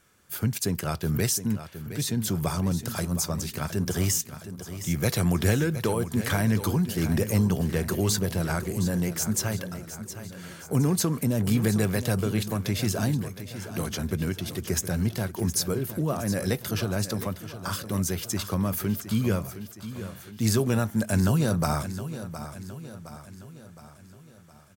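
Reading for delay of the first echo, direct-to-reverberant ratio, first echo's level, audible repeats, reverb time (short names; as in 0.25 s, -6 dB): 0.715 s, none, -12.0 dB, 5, none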